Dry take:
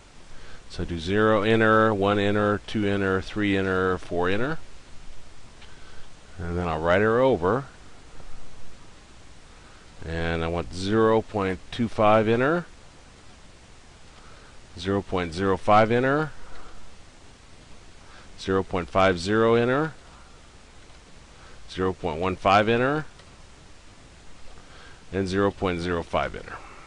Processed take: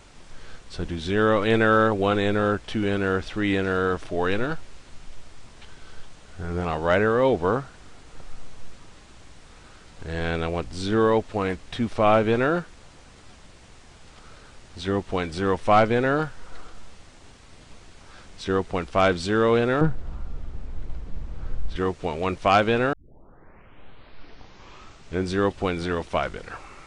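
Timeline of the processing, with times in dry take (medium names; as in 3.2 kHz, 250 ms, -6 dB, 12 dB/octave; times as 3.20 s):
19.81–21.76 s: tilt EQ -4 dB/octave
22.93 s: tape start 2.37 s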